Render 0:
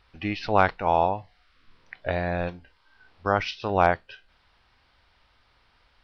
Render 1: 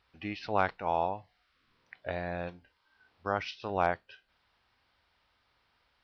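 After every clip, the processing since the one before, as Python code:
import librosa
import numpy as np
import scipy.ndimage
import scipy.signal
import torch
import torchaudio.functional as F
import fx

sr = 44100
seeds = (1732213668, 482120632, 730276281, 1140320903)

y = fx.highpass(x, sr, hz=94.0, slope=6)
y = y * 10.0 ** (-8.0 / 20.0)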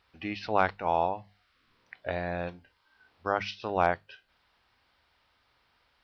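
y = fx.hum_notches(x, sr, base_hz=50, count=4)
y = y * 10.0 ** (3.0 / 20.0)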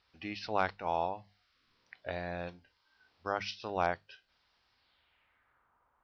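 y = fx.filter_sweep_lowpass(x, sr, from_hz=5500.0, to_hz=1100.0, start_s=4.7, end_s=5.76, q=2.4)
y = y * 10.0 ** (-6.0 / 20.0)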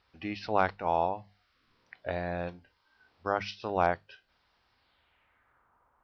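y = fx.high_shelf(x, sr, hz=2500.0, db=-8.5)
y = y * 10.0 ** (5.5 / 20.0)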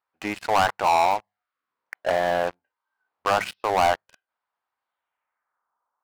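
y = fx.bandpass_q(x, sr, hz=1000.0, q=1.2)
y = fx.leveller(y, sr, passes=5)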